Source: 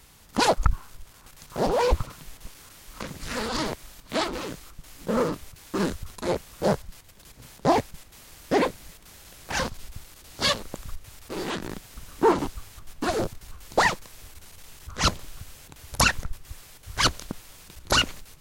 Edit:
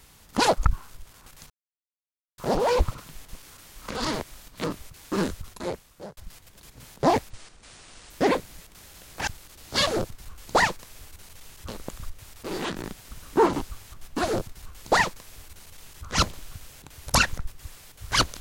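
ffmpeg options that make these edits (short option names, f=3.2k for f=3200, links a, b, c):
-filter_complex "[0:a]asplit=10[a][b][c][d][e][f][g][h][i][j];[a]atrim=end=1.5,asetpts=PTS-STARTPTS,afade=t=out:st=1.496:d=0.004:c=hsin,apad=pad_dur=0.88[k];[b]atrim=start=1.5:end=3.072,asetpts=PTS-STARTPTS,afade=t=in:d=0.004:c=hsin[l];[c]atrim=start=3.468:end=4.162[m];[d]atrim=start=5.258:end=6.79,asetpts=PTS-STARTPTS,afade=t=out:st=0.672:d=0.86[n];[e]atrim=start=6.79:end=7.924,asetpts=PTS-STARTPTS,afade=t=in:d=0.004:c=hsin[o];[f]atrim=start=7.92:end=8.41,asetpts=PTS-STARTPTS,asetrate=26901,aresample=44100[p];[g]atrim=start=8.406:end=9.582[q];[h]atrim=start=9.938:end=10.542[r];[i]atrim=start=13.098:end=14.912[s];[j]atrim=start=10.538[t];[k][l]concat=n=2:v=0:a=1[u];[u][m]acrossfade=d=0.004:c1=hsin:c2=hsin[v];[n][o]concat=n=2:v=0:a=1[w];[v][w]acrossfade=d=0.004:c1=hsin:c2=hsin[x];[x][p]acrossfade=d=0.004:c1=hsin:c2=hsin[y];[y][q]acrossfade=d=0.004:c1=hsin:c2=hsin[z];[z][r]acrossfade=d=0.004:c1=hsin:c2=hsin[aa];[aa][s]acrossfade=d=0.004:c1=hsin:c2=hsin[ab];[ab][t]acrossfade=d=0.004:c1=hsin:c2=hsin"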